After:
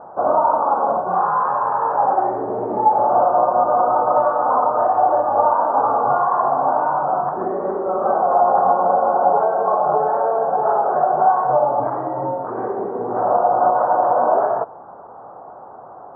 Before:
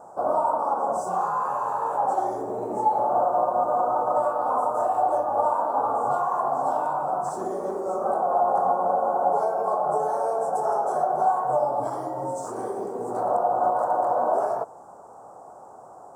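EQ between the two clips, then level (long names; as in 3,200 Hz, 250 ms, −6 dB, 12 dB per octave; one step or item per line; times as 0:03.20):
low-pass with resonance 1,700 Hz, resonance Q 1.7
high-frequency loss of the air 460 metres
+7.0 dB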